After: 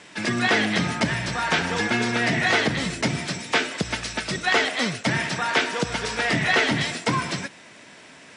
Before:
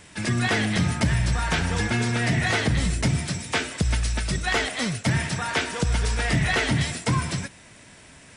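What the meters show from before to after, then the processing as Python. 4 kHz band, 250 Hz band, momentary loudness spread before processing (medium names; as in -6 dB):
+3.5 dB, +0.5 dB, 4 LU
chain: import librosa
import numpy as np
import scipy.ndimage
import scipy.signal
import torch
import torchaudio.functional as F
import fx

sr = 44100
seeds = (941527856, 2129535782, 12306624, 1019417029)

y = fx.bandpass_edges(x, sr, low_hz=230.0, high_hz=5900.0)
y = y * 10.0 ** (4.0 / 20.0)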